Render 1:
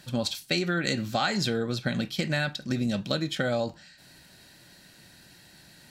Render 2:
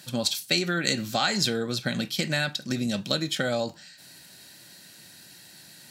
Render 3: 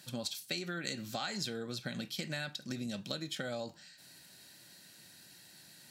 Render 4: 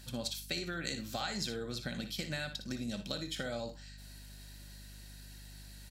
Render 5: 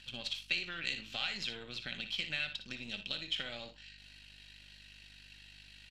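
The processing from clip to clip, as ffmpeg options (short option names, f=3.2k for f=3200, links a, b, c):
-af "highpass=110,highshelf=f=4k:g=9.5"
-af "acompressor=threshold=-31dB:ratio=2,volume=-7.5dB"
-filter_complex "[0:a]aeval=exprs='val(0)+0.00224*(sin(2*PI*50*n/s)+sin(2*PI*2*50*n/s)/2+sin(2*PI*3*50*n/s)/3+sin(2*PI*4*50*n/s)/4+sin(2*PI*5*50*n/s)/5)':c=same,asplit=2[a][b];[b]aecho=0:1:59|78:0.299|0.133[c];[a][c]amix=inputs=2:normalize=0"
-af "aeval=exprs='if(lt(val(0),0),0.447*val(0),val(0))':c=same,lowpass=f=2.8k:t=q:w=4.5,crystalizer=i=6.5:c=0,volume=-8.5dB"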